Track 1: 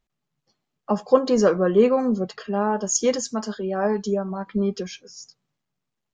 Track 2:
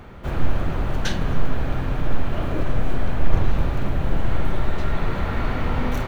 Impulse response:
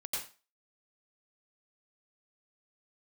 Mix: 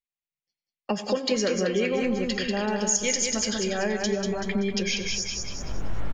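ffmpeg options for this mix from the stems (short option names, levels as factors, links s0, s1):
-filter_complex "[0:a]highshelf=f=1600:t=q:w=3:g=10,acompressor=threshold=0.0794:ratio=2,volume=1.33,asplit=4[s0][s1][s2][s3];[s1]volume=0.211[s4];[s2]volume=0.596[s5];[1:a]flanger=delay=18:depth=2.9:speed=0.56,adelay=1650,volume=1.06,asplit=2[s6][s7];[s7]volume=0.119[s8];[s3]apad=whole_len=340652[s9];[s6][s9]sidechaincompress=threshold=0.00178:ratio=8:attack=5.9:release=310[s10];[2:a]atrim=start_sample=2205[s11];[s4][s8]amix=inputs=2:normalize=0[s12];[s12][s11]afir=irnorm=-1:irlink=0[s13];[s5]aecho=0:1:191|382|573|764|955|1146:1|0.44|0.194|0.0852|0.0375|0.0165[s14];[s0][s10][s13][s14]amix=inputs=4:normalize=0,agate=range=0.0282:threshold=0.0126:ratio=16:detection=peak,acompressor=threshold=0.0447:ratio=2"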